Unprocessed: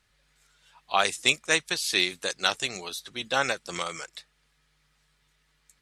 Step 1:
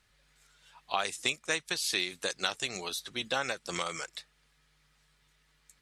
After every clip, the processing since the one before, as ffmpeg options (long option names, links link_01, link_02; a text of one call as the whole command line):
ffmpeg -i in.wav -af "acompressor=threshold=-29dB:ratio=3" out.wav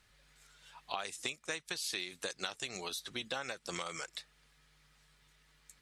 ffmpeg -i in.wav -af "acompressor=threshold=-41dB:ratio=2.5,volume=1.5dB" out.wav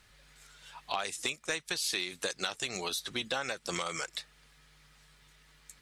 ffmpeg -i in.wav -af "asoftclip=type=tanh:threshold=-25dB,volume=6dB" out.wav